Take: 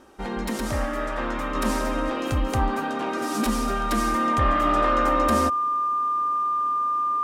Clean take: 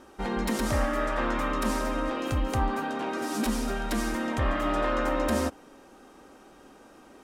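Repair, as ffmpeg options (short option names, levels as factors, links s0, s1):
-af "bandreject=f=1200:w=30,asetnsamples=n=441:p=0,asendcmd='1.55 volume volume -3.5dB',volume=1"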